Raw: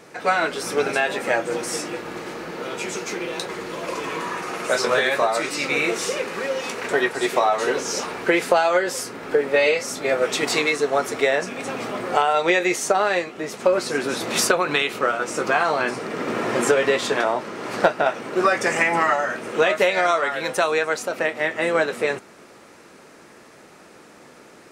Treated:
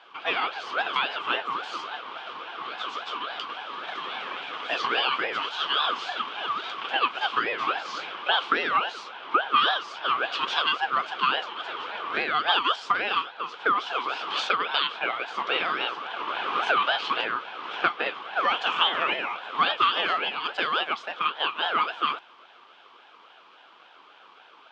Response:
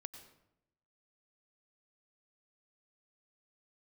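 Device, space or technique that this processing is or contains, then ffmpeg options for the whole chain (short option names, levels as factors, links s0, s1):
voice changer toy: -af "aeval=exprs='val(0)*sin(2*PI*920*n/s+920*0.35/3.6*sin(2*PI*3.6*n/s))':c=same,highpass=540,equalizer=f=590:t=q:w=4:g=-5,equalizer=f=1200:t=q:w=4:g=5,equalizer=f=1900:t=q:w=4:g=-10,equalizer=f=3200:t=q:w=4:g=6,lowpass=f=3900:w=0.5412,lowpass=f=3900:w=1.3066,volume=0.891"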